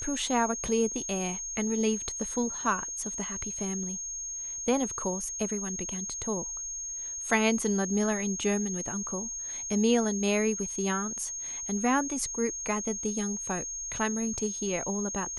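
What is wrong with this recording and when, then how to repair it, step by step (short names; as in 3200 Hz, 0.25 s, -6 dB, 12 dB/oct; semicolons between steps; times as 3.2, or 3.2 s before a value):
tone 6500 Hz -34 dBFS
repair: notch 6500 Hz, Q 30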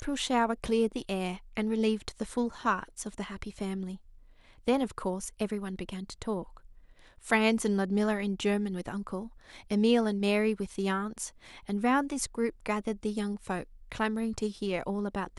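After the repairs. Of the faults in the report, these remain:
none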